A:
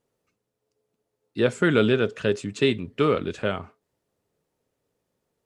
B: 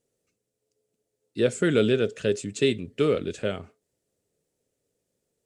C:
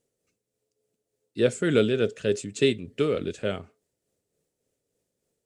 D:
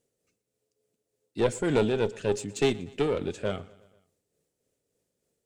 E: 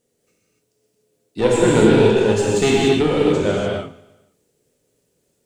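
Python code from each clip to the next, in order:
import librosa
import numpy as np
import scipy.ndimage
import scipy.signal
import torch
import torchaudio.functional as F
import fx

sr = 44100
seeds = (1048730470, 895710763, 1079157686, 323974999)

y1 = fx.graphic_eq(x, sr, hz=(500, 1000, 8000), db=(4, -10, 9))
y1 = y1 * librosa.db_to_amplitude(-2.5)
y2 = y1 * (1.0 - 0.39 / 2.0 + 0.39 / 2.0 * np.cos(2.0 * np.pi * 3.4 * (np.arange(len(y1)) / sr)))
y2 = y2 * librosa.db_to_amplitude(1.0)
y3 = fx.diode_clip(y2, sr, knee_db=-23.5)
y3 = fx.echo_feedback(y3, sr, ms=120, feedback_pct=59, wet_db=-22.0)
y4 = fx.rev_gated(y3, sr, seeds[0], gate_ms=320, shape='flat', drr_db=-5.5)
y4 = y4 * librosa.db_to_amplitude(5.5)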